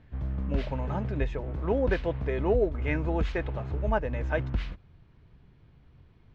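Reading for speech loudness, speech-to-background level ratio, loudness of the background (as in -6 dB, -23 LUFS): -31.5 LUFS, 2.5 dB, -34.0 LUFS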